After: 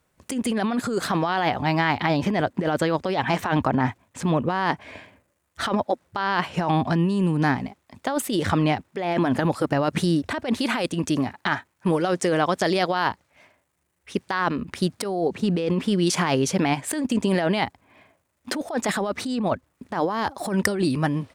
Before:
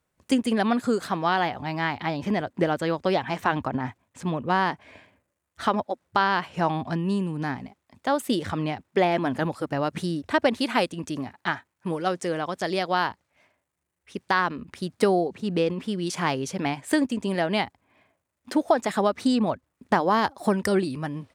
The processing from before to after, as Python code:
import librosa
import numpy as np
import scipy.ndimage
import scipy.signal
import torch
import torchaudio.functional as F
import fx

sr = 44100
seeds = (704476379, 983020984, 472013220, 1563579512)

y = fx.over_compress(x, sr, threshold_db=-27.0, ratio=-1.0)
y = F.gain(torch.from_numpy(y), 5.0).numpy()